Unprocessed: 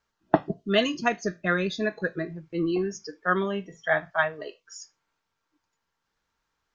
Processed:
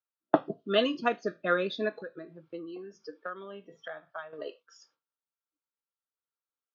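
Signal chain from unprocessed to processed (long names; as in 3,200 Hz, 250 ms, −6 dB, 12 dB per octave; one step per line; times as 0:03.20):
noise gate with hold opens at −46 dBFS
0:01.89–0:04.33: downward compressor 16 to 1, threshold −35 dBFS, peak gain reduction 18 dB
loudspeaker in its box 170–4,500 Hz, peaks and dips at 180 Hz −5 dB, 270 Hz +4 dB, 520 Hz +8 dB, 1,300 Hz +7 dB, 2,000 Hz −7 dB, 3,400 Hz +4 dB
level −4.5 dB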